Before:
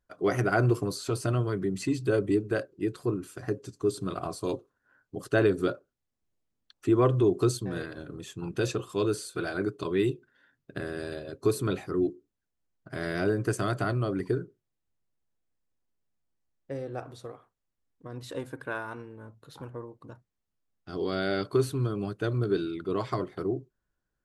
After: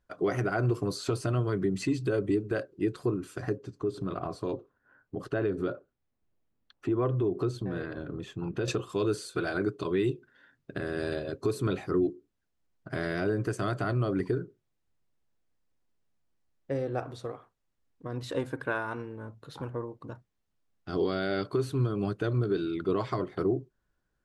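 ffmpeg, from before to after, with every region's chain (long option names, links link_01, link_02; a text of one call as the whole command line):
ffmpeg -i in.wav -filter_complex "[0:a]asettb=1/sr,asplit=3[link_01][link_02][link_03];[link_01]atrim=end=3.574[link_04];[link_02]atrim=start=3.57:end=8.68,asetpts=PTS-STARTPTS,afade=type=in:duration=0.004:curve=qsin,afade=type=out:start_time=5.106:duration=0.004:curve=qsin,acompressor=threshold=-36dB:ratio=2:attack=3.2:release=140:knee=1:detection=peak,equalizer=frequency=9100:width=0.42:gain=-12.5[link_05];[link_03]atrim=start=8.676[link_06];[link_04][link_05]acrossfade=duration=0.004:curve1=hsin:curve2=qsin[link_07];[link_07][link_06]acrossfade=duration=0.004:curve1=qsin:curve2=hsin,highshelf=frequency=8800:gain=-11.5,alimiter=limit=-23dB:level=0:latency=1:release=317,volume=4.5dB" out.wav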